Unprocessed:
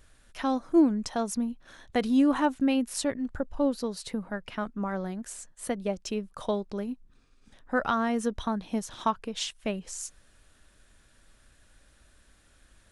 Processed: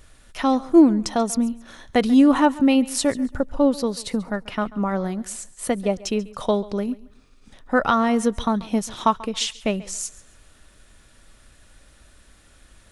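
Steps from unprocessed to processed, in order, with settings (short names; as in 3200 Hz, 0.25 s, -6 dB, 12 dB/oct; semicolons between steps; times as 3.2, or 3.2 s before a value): notch 1600 Hz, Q 14; on a send: thinning echo 0.138 s, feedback 28%, high-pass 180 Hz, level -19.5 dB; on the sum: gain +8 dB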